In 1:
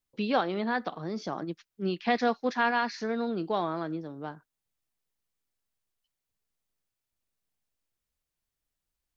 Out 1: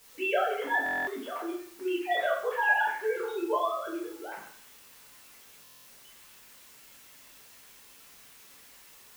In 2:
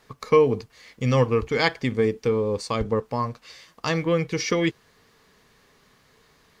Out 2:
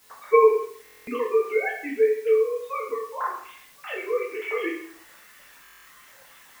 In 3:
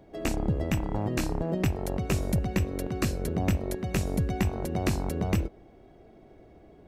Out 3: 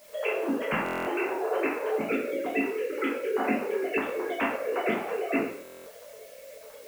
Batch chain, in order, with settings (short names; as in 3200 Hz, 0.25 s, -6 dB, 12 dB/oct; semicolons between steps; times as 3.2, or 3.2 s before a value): sine-wave speech; reverse; upward compressor, threshold -41 dBFS; reverse; low shelf 460 Hz -11 dB; in parallel at -6.5 dB: requantised 8-bit, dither triangular; on the sum: plate-style reverb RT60 0.58 s, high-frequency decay 0.9×, pre-delay 0 ms, DRR -5 dB; stuck buffer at 0.84/5.63, samples 1024, times 9; gain -5.5 dB